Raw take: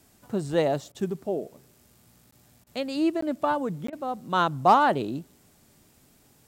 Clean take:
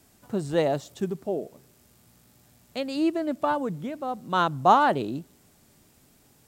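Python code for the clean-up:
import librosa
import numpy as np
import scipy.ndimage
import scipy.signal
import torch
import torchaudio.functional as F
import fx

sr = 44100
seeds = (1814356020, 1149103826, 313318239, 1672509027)

y = fx.fix_declip(x, sr, threshold_db=-9.0)
y = fx.fix_interpolate(y, sr, at_s=(2.31, 3.21, 3.87), length_ms=14.0)
y = fx.fix_interpolate(y, sr, at_s=(0.92, 2.64, 3.9), length_ms=25.0)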